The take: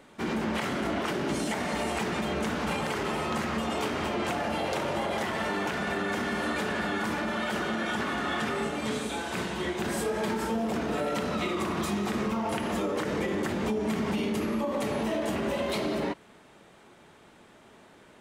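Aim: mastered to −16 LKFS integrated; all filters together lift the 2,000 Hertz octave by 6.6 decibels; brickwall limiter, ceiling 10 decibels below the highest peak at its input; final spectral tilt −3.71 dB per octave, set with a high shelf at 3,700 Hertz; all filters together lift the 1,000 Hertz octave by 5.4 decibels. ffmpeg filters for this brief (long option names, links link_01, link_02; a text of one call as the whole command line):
ffmpeg -i in.wav -af "equalizer=frequency=1000:width_type=o:gain=5,equalizer=frequency=2000:width_type=o:gain=5,highshelf=frequency=3700:gain=6.5,volume=14.5dB,alimiter=limit=-8.5dB:level=0:latency=1" out.wav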